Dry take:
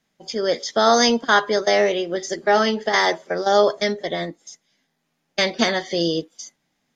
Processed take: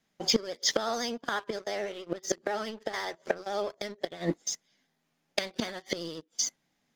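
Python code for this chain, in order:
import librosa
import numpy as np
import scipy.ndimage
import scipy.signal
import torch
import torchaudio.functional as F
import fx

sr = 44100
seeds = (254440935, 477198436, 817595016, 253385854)

y = fx.gate_flip(x, sr, shuts_db=-16.0, range_db=-24)
y = fx.leveller(y, sr, passes=2)
y = fx.vibrato(y, sr, rate_hz=14.0, depth_cents=48.0)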